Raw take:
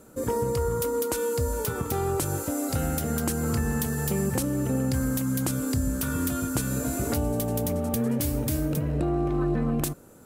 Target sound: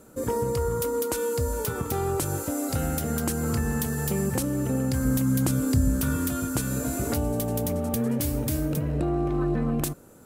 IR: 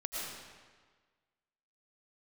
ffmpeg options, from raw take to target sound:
-filter_complex "[0:a]asettb=1/sr,asplit=3[a][b][c];[a]atrim=end=5.054[d];[b]atrim=start=5.05:end=6.15,asetpts=PTS-STARTPTS,afade=t=in:d=0.004:c=qsin,afade=t=out:st=1.096:d=0.004:c=qsin,lowshelf=f=330:g=5.5[e];[c]atrim=start=6.146[f];[d][e]acrossfade=d=0.004:c1=hsin:c2=qsin[g];[g][f]acrossfade=d=0.004:c1=qsin:c2=hsin"

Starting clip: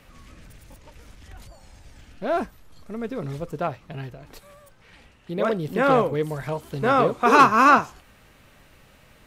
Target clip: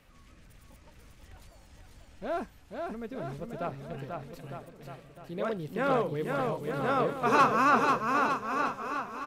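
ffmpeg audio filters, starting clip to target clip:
-af "aecho=1:1:490|906.5|1261|1561|1817:0.631|0.398|0.251|0.158|0.1,volume=-9dB"

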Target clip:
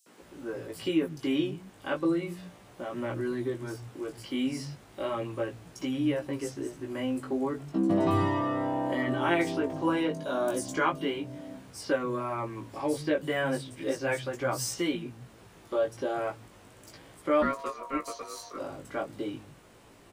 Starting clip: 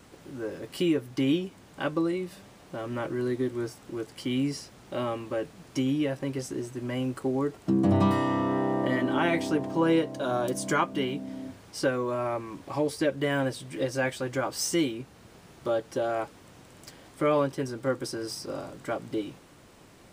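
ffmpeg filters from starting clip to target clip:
-filter_complex "[0:a]acrossover=split=170|5100[a][b][c];[b]adelay=60[d];[a]adelay=210[e];[e][d][c]amix=inputs=3:normalize=0,asplit=3[f][g][h];[f]afade=t=out:st=17.41:d=0.02[i];[g]aeval=exprs='val(0)*sin(2*PI*820*n/s)':c=same,afade=t=in:st=17.41:d=0.02,afade=t=out:st=18.56:d=0.02[j];[h]afade=t=in:st=18.56:d=0.02[k];[i][j][k]amix=inputs=3:normalize=0,flanger=delay=16.5:depth=3.2:speed=0.34,volume=2dB"

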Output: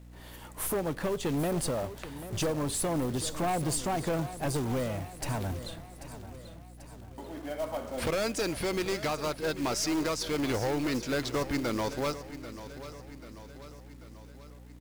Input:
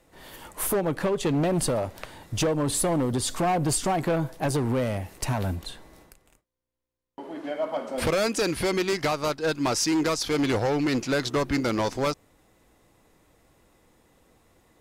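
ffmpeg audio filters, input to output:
-filter_complex "[0:a]asplit=2[a][b];[b]aeval=exprs='clip(val(0),-1,0.0251)':c=same,volume=-5.5dB[c];[a][c]amix=inputs=2:normalize=0,aecho=1:1:789|1578|2367|3156|3945:0.211|0.114|0.0616|0.0333|0.018,aeval=exprs='val(0)+0.01*(sin(2*PI*60*n/s)+sin(2*PI*2*60*n/s)/2+sin(2*PI*3*60*n/s)/3+sin(2*PI*4*60*n/s)/4+sin(2*PI*5*60*n/s)/5)':c=same,acrusher=bits=4:mode=log:mix=0:aa=0.000001,volume=-8.5dB"

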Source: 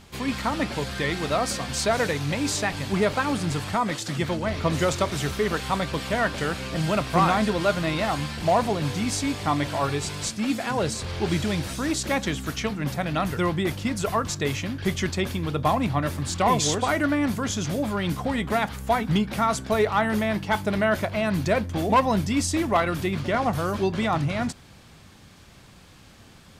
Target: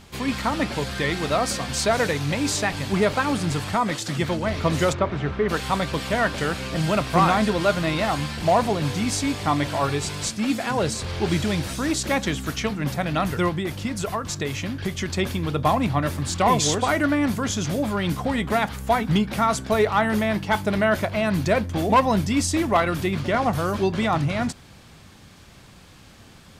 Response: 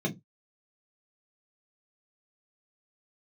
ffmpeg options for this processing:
-filter_complex "[0:a]asplit=3[a][b][c];[a]afade=t=out:st=4.92:d=0.02[d];[b]lowpass=1.9k,afade=t=in:st=4.92:d=0.02,afade=t=out:st=5.48:d=0.02[e];[c]afade=t=in:st=5.48:d=0.02[f];[d][e][f]amix=inputs=3:normalize=0,asettb=1/sr,asplit=3[g][h][i];[g]atrim=end=13.484[j];[h]atrim=start=13.48:end=15.1,asetpts=PTS-STARTPTS,afade=t=in:d=0.004:c=qsin,afade=t=out:st=1.616:d=0.004:c=qsin,acompressor=threshold=-25dB:ratio=6[k];[i]atrim=start=15.096[l];[j][k]acrossfade=d=0.004:c1=hsin:c2=qsin[m];[m][l]acrossfade=d=0.004:c1=qsin:c2=hsin,volume=2dB"

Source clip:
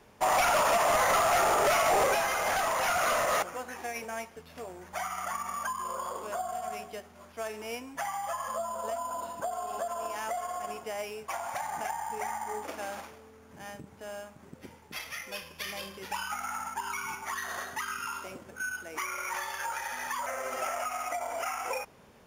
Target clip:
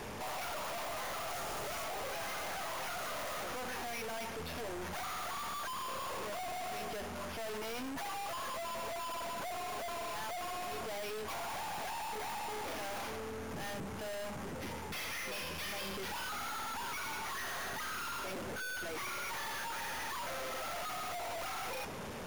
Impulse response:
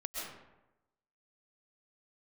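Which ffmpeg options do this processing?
-filter_complex "[0:a]asettb=1/sr,asplit=3[a][b][c];[a]atrim=end=1.304[d];[b]atrim=start=1.3:end=1.84,asetpts=PTS-STARTPTS,afade=t=in:d=0.004:c=qsin,afade=t=out:st=0.536:d=0.004:c=qsin,bass=f=250:g=12,treble=f=4k:g=4[e];[c]atrim=start=1.836[f];[d][e]acrossfade=d=0.004:c1=hsin:c2=qsin[g];[g][f]acrossfade=d=0.004:c1=qsin:c2=hsin,aeval=exprs='(tanh(794*val(0)+0.3)-tanh(0.3))/794':c=same,volume=18dB"

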